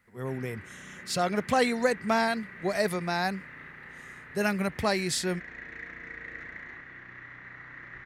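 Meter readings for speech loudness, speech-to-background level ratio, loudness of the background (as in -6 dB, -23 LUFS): -29.0 LUFS, 15.0 dB, -44.0 LUFS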